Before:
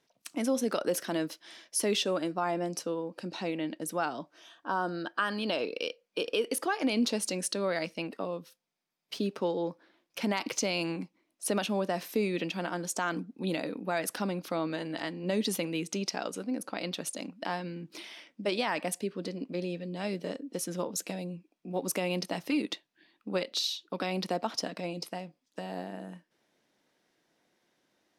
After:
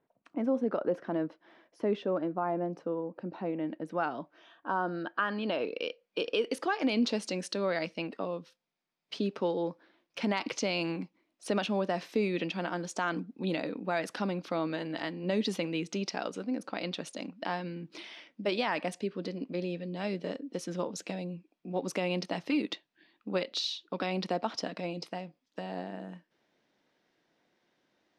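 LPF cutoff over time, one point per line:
3.52 s 1200 Hz
4.08 s 2500 Hz
5.59 s 2500 Hz
6.24 s 4800 Hz

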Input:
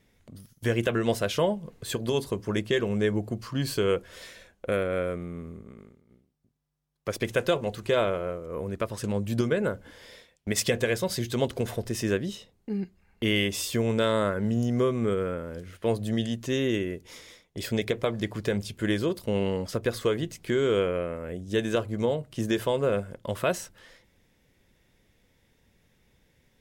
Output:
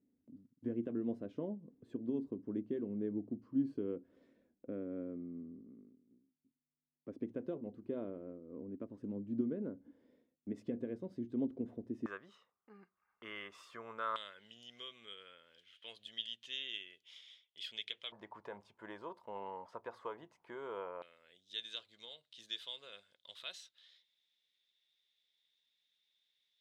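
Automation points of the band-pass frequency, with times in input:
band-pass, Q 6.5
270 Hz
from 12.06 s 1200 Hz
from 14.16 s 3200 Hz
from 18.12 s 930 Hz
from 21.02 s 3700 Hz

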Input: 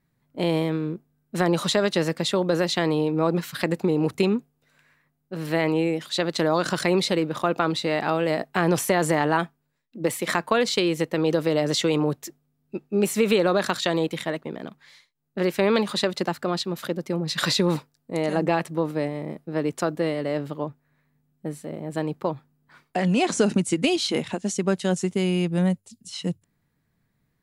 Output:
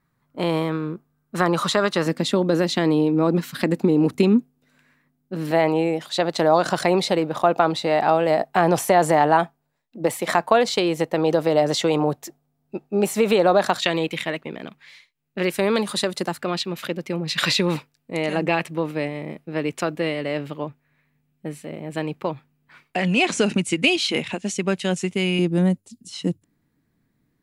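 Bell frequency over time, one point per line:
bell +10 dB 0.79 oct
1200 Hz
from 2.06 s 250 Hz
from 5.51 s 740 Hz
from 13.82 s 2500 Hz
from 15.5 s 9900 Hz
from 16.39 s 2500 Hz
from 25.39 s 290 Hz

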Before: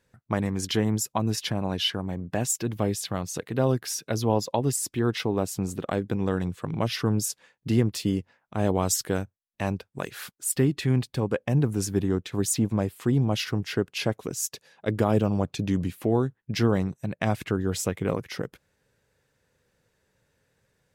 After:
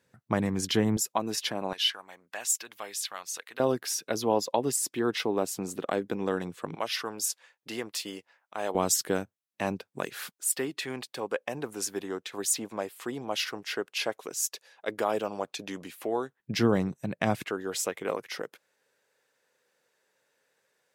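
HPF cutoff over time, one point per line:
120 Hz
from 0.97 s 330 Hz
from 1.73 s 1200 Hz
from 3.6 s 280 Hz
from 6.75 s 650 Hz
from 8.75 s 210 Hz
from 10.33 s 530 Hz
from 16.4 s 150 Hz
from 17.44 s 450 Hz

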